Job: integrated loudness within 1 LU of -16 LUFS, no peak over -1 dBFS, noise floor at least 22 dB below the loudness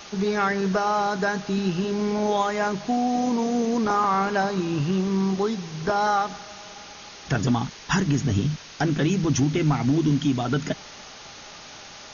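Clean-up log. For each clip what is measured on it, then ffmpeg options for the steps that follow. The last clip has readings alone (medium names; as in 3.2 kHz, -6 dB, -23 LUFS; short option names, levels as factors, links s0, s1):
noise floor -43 dBFS; noise floor target -46 dBFS; loudness -24.0 LUFS; peak level -11.0 dBFS; loudness target -16.0 LUFS
-> -af "afftdn=nr=6:nf=-43"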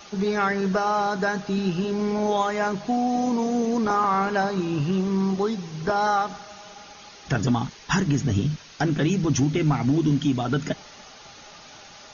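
noise floor -46 dBFS; loudness -24.0 LUFS; peak level -11.0 dBFS; loudness target -16.0 LUFS
-> -af "volume=2.51"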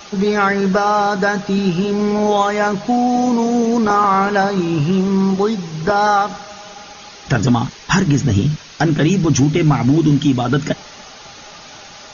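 loudness -16.0 LUFS; peak level -3.0 dBFS; noise floor -38 dBFS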